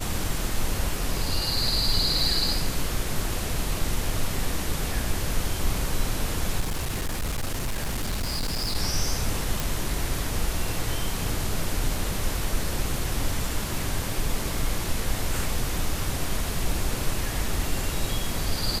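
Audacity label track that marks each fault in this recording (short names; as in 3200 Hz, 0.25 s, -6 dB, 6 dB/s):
6.600000	8.760000	clipped -23.5 dBFS
9.600000	9.600000	pop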